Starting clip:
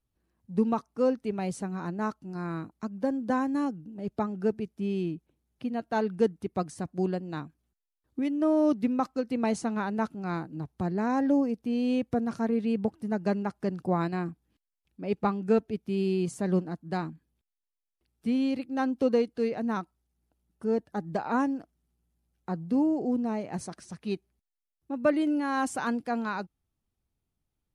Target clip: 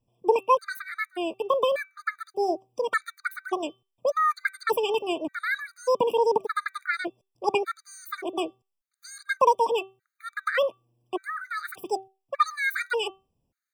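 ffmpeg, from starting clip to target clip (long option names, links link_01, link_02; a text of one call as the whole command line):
ffmpeg -i in.wav -af "bandreject=frequency=190.5:width_type=h:width=4,bandreject=frequency=381:width_type=h:width=4,bandreject=frequency=571.5:width_type=h:width=4,bandreject=frequency=762:width_type=h:width=4,bandreject=frequency=952.5:width_type=h:width=4,bandreject=frequency=1143:width_type=h:width=4,bandreject=frequency=1333.5:width_type=h:width=4,bandreject=frequency=1524:width_type=h:width=4,bandreject=frequency=1714.5:width_type=h:width=4,bandreject=frequency=1905:width_type=h:width=4,asetrate=89082,aresample=44100,afftfilt=real='re*gt(sin(2*PI*0.85*pts/sr)*(1-2*mod(floor(b*sr/1024/1200),2)),0)':imag='im*gt(sin(2*PI*0.85*pts/sr)*(1-2*mod(floor(b*sr/1024/1200),2)),0)':win_size=1024:overlap=0.75,volume=6dB" out.wav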